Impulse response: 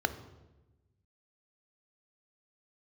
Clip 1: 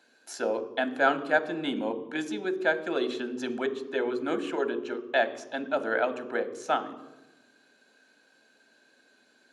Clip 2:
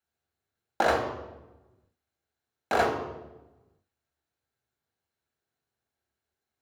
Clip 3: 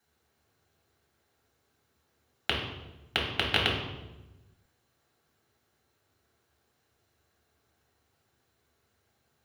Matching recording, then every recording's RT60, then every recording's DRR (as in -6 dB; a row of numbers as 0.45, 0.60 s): 1; 1.1, 1.1, 1.1 s; 10.0, 0.5, -3.5 dB